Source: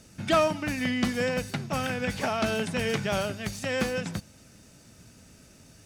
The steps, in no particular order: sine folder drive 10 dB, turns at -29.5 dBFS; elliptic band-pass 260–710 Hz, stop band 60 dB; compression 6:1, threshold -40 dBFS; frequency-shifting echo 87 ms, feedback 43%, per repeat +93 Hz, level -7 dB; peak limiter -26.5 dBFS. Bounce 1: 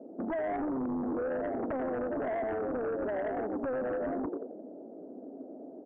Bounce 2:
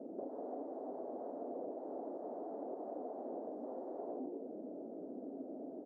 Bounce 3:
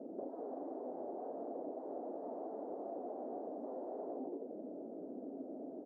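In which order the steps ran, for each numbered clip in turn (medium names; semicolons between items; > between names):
frequency-shifting echo > peak limiter > elliptic band-pass > compression > sine folder; peak limiter > frequency-shifting echo > sine folder > elliptic band-pass > compression; frequency-shifting echo > peak limiter > sine folder > elliptic band-pass > compression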